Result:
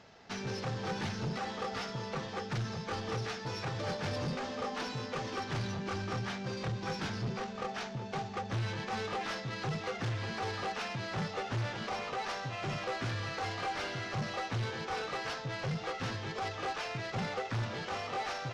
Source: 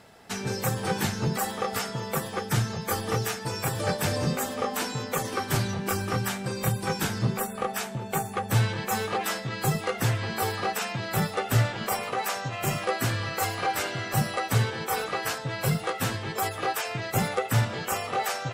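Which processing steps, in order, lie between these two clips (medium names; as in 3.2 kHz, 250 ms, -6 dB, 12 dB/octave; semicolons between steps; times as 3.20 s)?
CVSD coder 32 kbps; saturation -26 dBFS, distortion -10 dB; trim -4.5 dB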